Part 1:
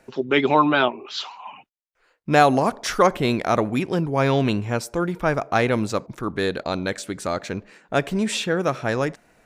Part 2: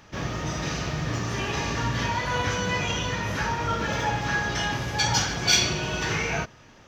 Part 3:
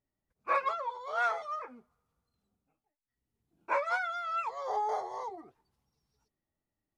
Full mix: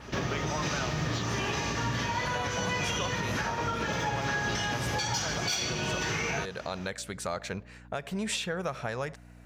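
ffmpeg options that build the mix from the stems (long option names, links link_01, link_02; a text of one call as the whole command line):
ffmpeg -i stem1.wav -i stem2.wav -filter_complex "[0:a]acompressor=threshold=-20dB:ratio=6,equalizer=frequency=300:width=2.4:gain=-13.5,aeval=exprs='val(0)+0.00562*(sin(2*PI*60*n/s)+sin(2*PI*2*60*n/s)/2+sin(2*PI*3*60*n/s)/3+sin(2*PI*4*60*n/s)/4+sin(2*PI*5*60*n/s)/5)':channel_layout=same,volume=-2.5dB[link_01];[1:a]adynamicequalizer=threshold=0.00794:dfrequency=9400:dqfactor=0.89:tfrequency=9400:tqfactor=0.89:attack=5:release=100:ratio=0.375:range=2.5:mode=boostabove:tftype=bell,acontrast=74,volume=-1dB[link_02];[link_01][link_02]amix=inputs=2:normalize=0,highpass=frequency=71:poles=1,acompressor=threshold=-27dB:ratio=2,volume=0dB,alimiter=limit=-21dB:level=0:latency=1:release=331" out.wav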